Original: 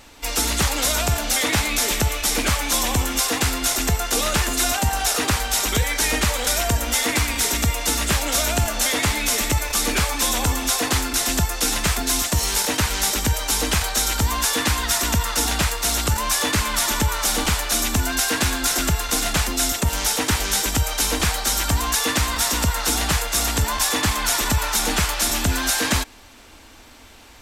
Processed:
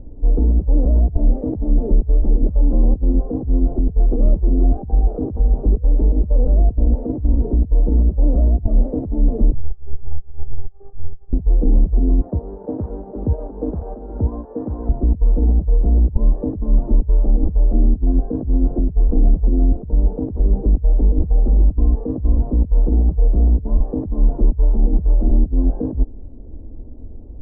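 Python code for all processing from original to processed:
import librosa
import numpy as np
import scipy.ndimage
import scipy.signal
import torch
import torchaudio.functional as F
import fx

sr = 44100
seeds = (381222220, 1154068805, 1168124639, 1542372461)

y = fx.chain(x, sr, fx.tone_stack(knobs='10-0-10'),
    fx.over_compress(threshold_db=-29.0, ratio=-0.5),
    fx.robotise(hz=397.0), at=(9.54, 11.33))
y = fx.chain(y, sr, fx.highpass(hz=1000.0, slope=6),
    fx.env_flatten(amount_pct=100), at=(12.21, 14.89))
y = scipy.signal.sosfilt(scipy.signal.cheby2(4, 80, 3100.0, 'lowpass', fs=sr, output='sos'), y)
y = fx.over_compress(y, sr, threshold_db=-27.0, ratio=-0.5)
y = fx.tilt_eq(y, sr, slope=-3.5)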